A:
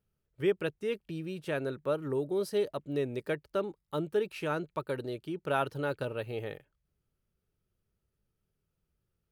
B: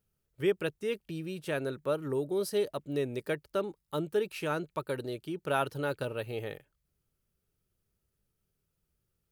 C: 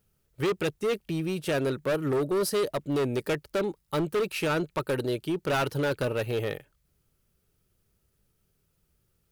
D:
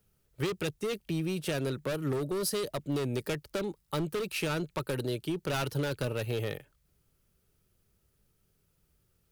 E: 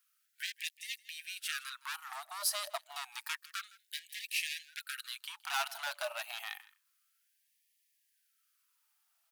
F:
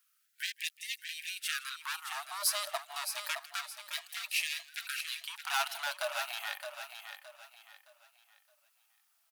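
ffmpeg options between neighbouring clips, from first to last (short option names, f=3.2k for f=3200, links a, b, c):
-af "highshelf=f=5.3k:g=7.5"
-af "asoftclip=type=hard:threshold=-31.5dB,volume=8.5dB"
-filter_complex "[0:a]acrossover=split=190|3000[a][b][c];[b]acompressor=threshold=-34dB:ratio=2.5[d];[a][d][c]amix=inputs=3:normalize=0"
-af "aecho=1:1:161:0.0944,afftfilt=real='re*gte(b*sr/1024,590*pow(1700/590,0.5+0.5*sin(2*PI*0.29*pts/sr)))':imag='im*gte(b*sr/1024,590*pow(1700/590,0.5+0.5*sin(2*PI*0.29*pts/sr)))':win_size=1024:overlap=0.75,volume=1dB"
-af "aecho=1:1:617|1234|1851|2468:0.398|0.131|0.0434|0.0143,volume=2.5dB"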